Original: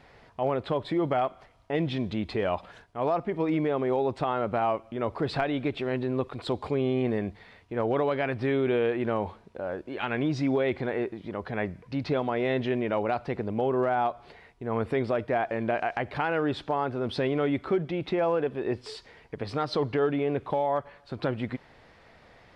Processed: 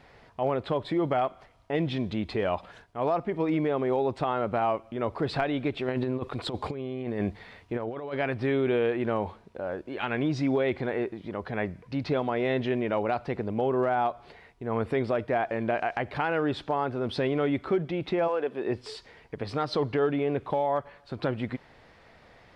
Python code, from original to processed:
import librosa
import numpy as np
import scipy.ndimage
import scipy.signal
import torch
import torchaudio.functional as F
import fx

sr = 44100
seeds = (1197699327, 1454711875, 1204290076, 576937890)

y = fx.over_compress(x, sr, threshold_db=-30.0, ratio=-0.5, at=(5.88, 8.14))
y = fx.highpass(y, sr, hz=fx.line((18.27, 580.0), (18.68, 150.0)), slope=12, at=(18.27, 18.68), fade=0.02)